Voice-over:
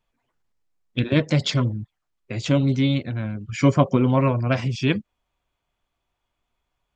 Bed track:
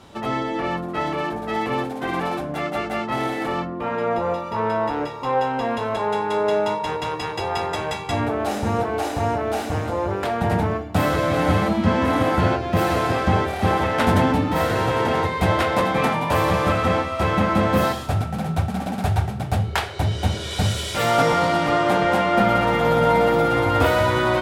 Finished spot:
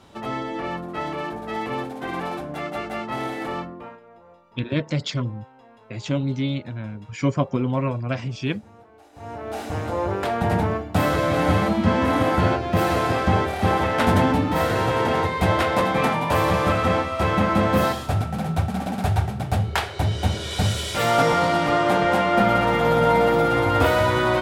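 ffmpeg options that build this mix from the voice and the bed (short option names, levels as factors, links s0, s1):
-filter_complex "[0:a]adelay=3600,volume=0.596[s0];[1:a]volume=13.3,afade=t=out:st=3.57:d=0.43:silence=0.0707946,afade=t=in:st=9.12:d=0.89:silence=0.0473151[s1];[s0][s1]amix=inputs=2:normalize=0"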